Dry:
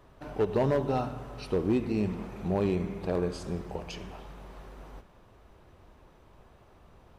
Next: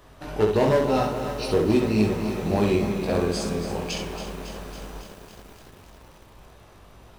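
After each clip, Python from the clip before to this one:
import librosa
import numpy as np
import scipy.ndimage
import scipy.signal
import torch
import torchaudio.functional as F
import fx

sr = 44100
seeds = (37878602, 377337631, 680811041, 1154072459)

y = fx.high_shelf(x, sr, hz=2700.0, db=9.0)
y = fx.room_early_taps(y, sr, ms=(19, 65), db=(-3.5, -4.5))
y = fx.echo_crushed(y, sr, ms=277, feedback_pct=80, bits=8, wet_db=-10.0)
y = y * librosa.db_to_amplitude(3.5)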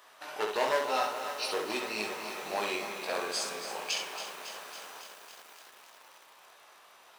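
y = scipy.signal.sosfilt(scipy.signal.butter(2, 910.0, 'highpass', fs=sr, output='sos'), x)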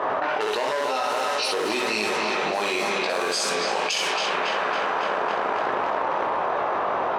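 y = fx.peak_eq(x, sr, hz=15000.0, db=-14.5, octaves=0.4)
y = fx.env_lowpass(y, sr, base_hz=710.0, full_db=-31.0)
y = fx.env_flatten(y, sr, amount_pct=100)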